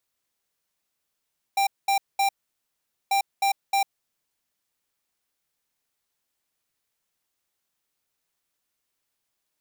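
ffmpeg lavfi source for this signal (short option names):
-f lavfi -i "aevalsrc='0.0841*(2*lt(mod(790*t,1),0.5)-1)*clip(min(mod(mod(t,1.54),0.31),0.1-mod(mod(t,1.54),0.31))/0.005,0,1)*lt(mod(t,1.54),0.93)':d=3.08:s=44100"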